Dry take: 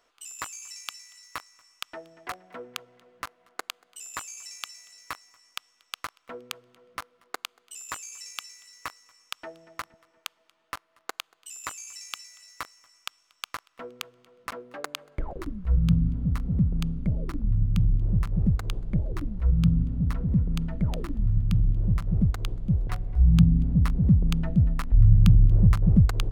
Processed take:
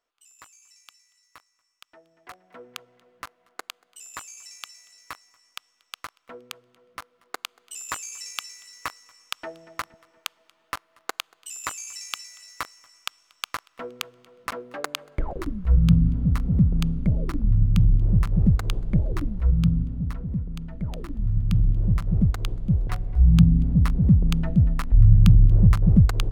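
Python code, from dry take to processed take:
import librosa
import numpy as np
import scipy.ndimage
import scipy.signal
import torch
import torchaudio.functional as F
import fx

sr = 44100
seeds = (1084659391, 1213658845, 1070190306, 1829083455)

y = fx.gain(x, sr, db=fx.line((1.84, -14.0), (2.75, -2.0), (6.99, -2.0), (7.76, 4.5), (19.19, 4.5), (20.56, -6.5), (21.6, 2.5)))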